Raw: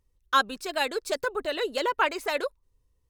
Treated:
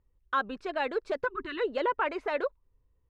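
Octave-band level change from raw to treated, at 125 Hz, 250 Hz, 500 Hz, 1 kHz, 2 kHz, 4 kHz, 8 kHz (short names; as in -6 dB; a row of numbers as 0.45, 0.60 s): n/a, -0.5 dB, -1.5 dB, -4.0 dB, -5.0 dB, -12.0 dB, under -20 dB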